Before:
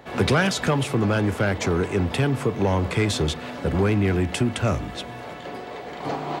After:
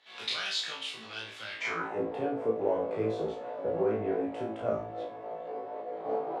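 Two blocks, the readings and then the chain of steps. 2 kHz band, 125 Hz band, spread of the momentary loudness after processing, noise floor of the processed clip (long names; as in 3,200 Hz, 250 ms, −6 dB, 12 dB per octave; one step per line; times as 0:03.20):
−10.5 dB, −23.0 dB, 10 LU, −46 dBFS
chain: multi-voice chorus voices 2, 1.5 Hz, delay 29 ms, depth 3 ms
band-pass filter sweep 3,700 Hz → 540 Hz, 0:01.49–0:01.99
flutter between parallel walls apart 3.1 metres, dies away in 0.38 s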